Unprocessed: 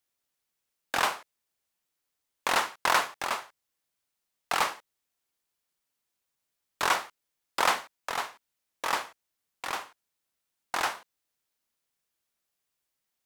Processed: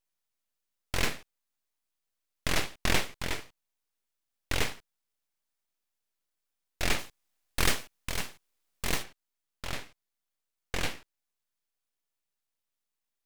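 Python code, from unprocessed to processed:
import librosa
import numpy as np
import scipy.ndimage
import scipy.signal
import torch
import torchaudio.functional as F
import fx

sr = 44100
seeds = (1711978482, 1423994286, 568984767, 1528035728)

y = fx.high_shelf(x, sr, hz=5400.0, db=fx.steps((0.0, -2.0), (6.98, 6.5), (9.02, -4.5)))
y = np.abs(y)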